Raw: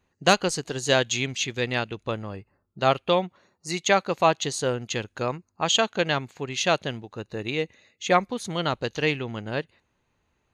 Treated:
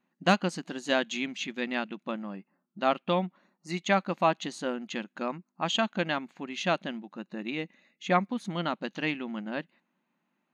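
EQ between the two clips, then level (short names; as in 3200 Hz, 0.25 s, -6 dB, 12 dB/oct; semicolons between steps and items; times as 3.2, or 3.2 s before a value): brick-wall FIR high-pass 170 Hz; tone controls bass +10 dB, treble -11 dB; bell 440 Hz -14 dB 0.27 oct; -4.0 dB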